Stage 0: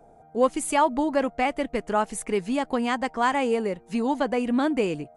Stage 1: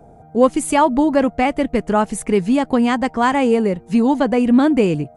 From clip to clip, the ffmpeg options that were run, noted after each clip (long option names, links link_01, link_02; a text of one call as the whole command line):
ffmpeg -i in.wav -af "equalizer=frequency=100:width=0.42:gain=11,volume=5dB" out.wav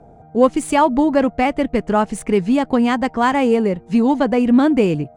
ffmpeg -i in.wav -af "adynamicsmooth=sensitivity=5.5:basefreq=6500" out.wav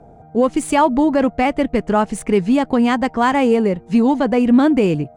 ffmpeg -i in.wav -af "alimiter=level_in=5.5dB:limit=-1dB:release=50:level=0:latency=1,volume=-4.5dB" out.wav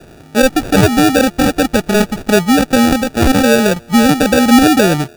ffmpeg -i in.wav -af "acrusher=samples=42:mix=1:aa=0.000001,volume=4.5dB" out.wav